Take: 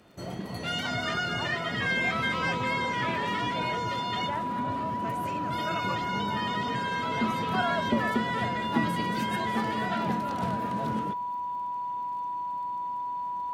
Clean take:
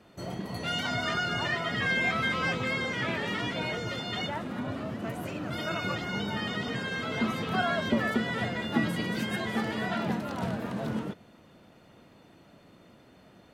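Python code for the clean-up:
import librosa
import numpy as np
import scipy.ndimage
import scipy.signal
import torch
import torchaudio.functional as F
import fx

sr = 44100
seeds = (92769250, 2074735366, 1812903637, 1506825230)

y = fx.fix_declick_ar(x, sr, threshold=6.5)
y = fx.notch(y, sr, hz=980.0, q=30.0)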